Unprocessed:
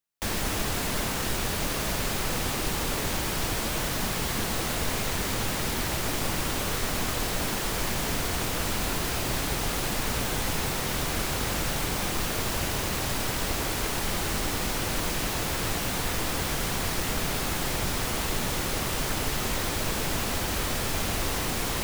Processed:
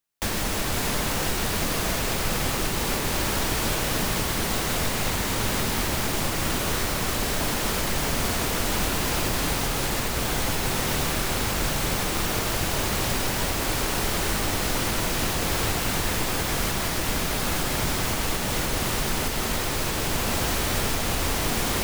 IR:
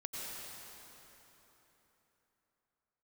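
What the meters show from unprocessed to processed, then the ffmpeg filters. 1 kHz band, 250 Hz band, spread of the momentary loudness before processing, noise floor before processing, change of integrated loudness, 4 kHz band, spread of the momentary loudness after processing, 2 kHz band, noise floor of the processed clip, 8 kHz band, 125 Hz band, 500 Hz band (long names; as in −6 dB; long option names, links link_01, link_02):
+3.5 dB, +3.0 dB, 0 LU, −30 dBFS, +3.0 dB, +3.0 dB, 1 LU, +3.0 dB, −27 dBFS, +3.0 dB, +3.0 dB, +3.5 dB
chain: -filter_complex "[0:a]alimiter=limit=-19dB:level=0:latency=1:release=334,asplit=2[link_01][link_02];[1:a]atrim=start_sample=2205[link_03];[link_02][link_03]afir=irnorm=-1:irlink=0,volume=-0.5dB[link_04];[link_01][link_04]amix=inputs=2:normalize=0"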